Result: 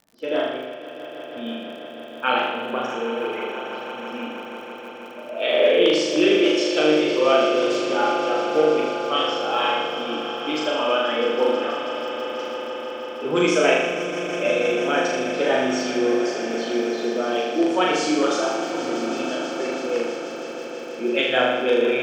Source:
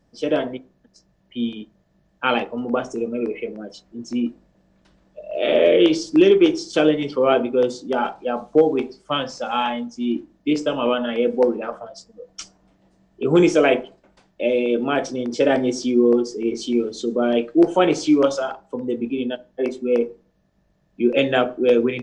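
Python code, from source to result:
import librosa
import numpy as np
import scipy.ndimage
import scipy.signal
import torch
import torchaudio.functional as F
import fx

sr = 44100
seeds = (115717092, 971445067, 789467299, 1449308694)

p1 = fx.spec_quant(x, sr, step_db=15)
p2 = fx.highpass(p1, sr, hz=780.0, slope=6)
p3 = fx.env_lowpass(p2, sr, base_hz=1300.0, full_db=-20.5)
p4 = fx.room_flutter(p3, sr, wall_m=6.7, rt60_s=1.1)
p5 = fx.dmg_crackle(p4, sr, seeds[0], per_s=63.0, level_db=-39.0)
y = p5 + fx.echo_swell(p5, sr, ms=162, loudest=5, wet_db=-14.0, dry=0)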